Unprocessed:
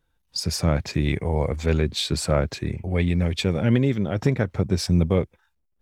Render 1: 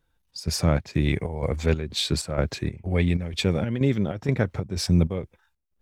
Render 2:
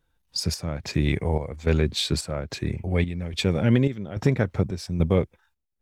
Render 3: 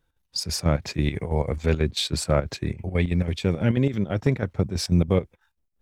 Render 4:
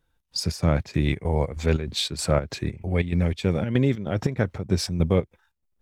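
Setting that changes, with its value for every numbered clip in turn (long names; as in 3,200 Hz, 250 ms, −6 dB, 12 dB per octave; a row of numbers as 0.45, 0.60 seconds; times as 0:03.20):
square-wave tremolo, speed: 2.1, 1.2, 6.1, 3.2 Hertz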